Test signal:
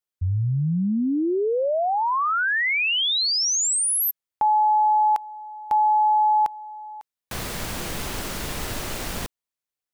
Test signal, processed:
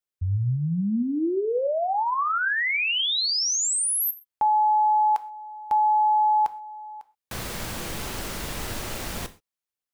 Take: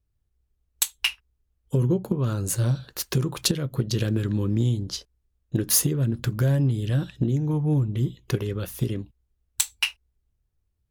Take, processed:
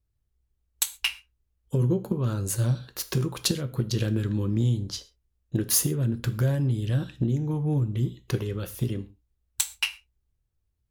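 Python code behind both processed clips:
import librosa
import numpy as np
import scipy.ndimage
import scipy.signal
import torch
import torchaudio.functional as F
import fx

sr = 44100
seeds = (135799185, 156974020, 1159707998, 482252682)

y = fx.rev_gated(x, sr, seeds[0], gate_ms=150, shape='falling', drr_db=11.0)
y = y * librosa.db_to_amplitude(-2.5)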